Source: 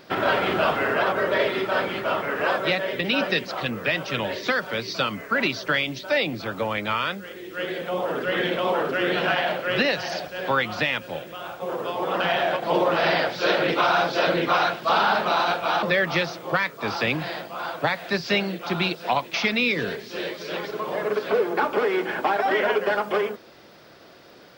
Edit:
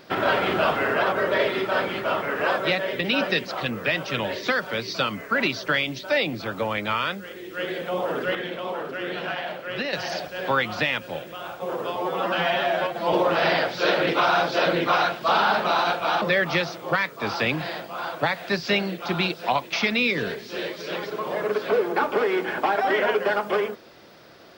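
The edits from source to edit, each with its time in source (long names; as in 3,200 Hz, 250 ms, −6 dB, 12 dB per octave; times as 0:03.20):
0:08.35–0:09.93: clip gain −7 dB
0:11.96–0:12.74: time-stretch 1.5×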